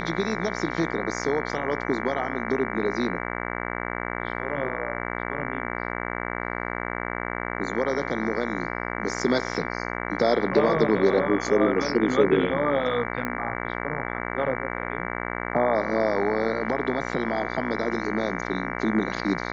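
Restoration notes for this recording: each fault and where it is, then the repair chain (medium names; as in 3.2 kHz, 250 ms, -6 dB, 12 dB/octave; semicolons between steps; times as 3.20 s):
buzz 60 Hz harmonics 38 -31 dBFS
13.25 s: pop -15 dBFS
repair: de-click; de-hum 60 Hz, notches 38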